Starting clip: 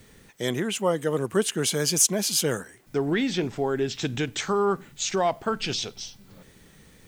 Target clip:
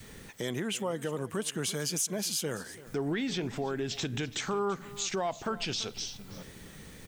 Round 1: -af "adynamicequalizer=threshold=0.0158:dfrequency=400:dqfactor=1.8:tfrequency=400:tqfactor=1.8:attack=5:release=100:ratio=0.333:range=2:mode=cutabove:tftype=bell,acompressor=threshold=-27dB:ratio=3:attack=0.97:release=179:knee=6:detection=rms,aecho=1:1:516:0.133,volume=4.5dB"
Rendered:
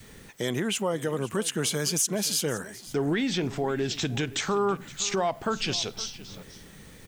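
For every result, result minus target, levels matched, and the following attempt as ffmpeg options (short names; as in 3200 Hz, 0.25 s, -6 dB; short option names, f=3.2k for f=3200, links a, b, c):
echo 0.18 s late; compressor: peak gain reduction -5.5 dB
-af "adynamicequalizer=threshold=0.0158:dfrequency=400:dqfactor=1.8:tfrequency=400:tqfactor=1.8:attack=5:release=100:ratio=0.333:range=2:mode=cutabove:tftype=bell,acompressor=threshold=-27dB:ratio=3:attack=0.97:release=179:knee=6:detection=rms,aecho=1:1:336:0.133,volume=4.5dB"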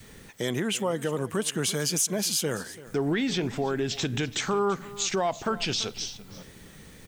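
compressor: peak gain reduction -5.5 dB
-af "adynamicequalizer=threshold=0.0158:dfrequency=400:dqfactor=1.8:tfrequency=400:tqfactor=1.8:attack=5:release=100:ratio=0.333:range=2:mode=cutabove:tftype=bell,acompressor=threshold=-35dB:ratio=3:attack=0.97:release=179:knee=6:detection=rms,aecho=1:1:336:0.133,volume=4.5dB"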